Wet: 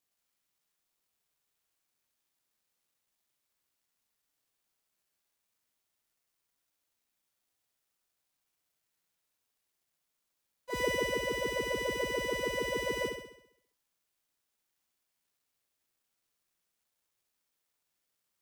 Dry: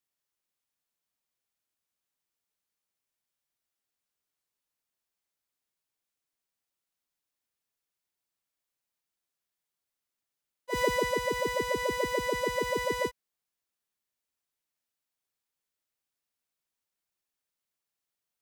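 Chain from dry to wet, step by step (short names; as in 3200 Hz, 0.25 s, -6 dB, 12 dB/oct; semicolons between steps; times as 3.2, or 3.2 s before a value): G.711 law mismatch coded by mu; on a send: flutter echo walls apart 11.4 m, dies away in 0.73 s; on the sum: gain -5.5 dB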